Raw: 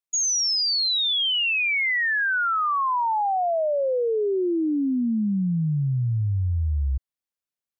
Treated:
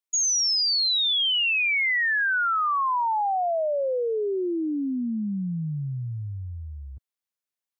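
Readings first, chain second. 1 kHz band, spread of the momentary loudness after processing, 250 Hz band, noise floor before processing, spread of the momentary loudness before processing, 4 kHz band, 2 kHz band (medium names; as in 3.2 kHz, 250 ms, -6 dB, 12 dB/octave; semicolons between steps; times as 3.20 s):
-1.0 dB, 14 LU, -4.0 dB, under -85 dBFS, 5 LU, 0.0 dB, -0.5 dB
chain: high-pass 120 Hz 12 dB/octave; bass shelf 470 Hz -5 dB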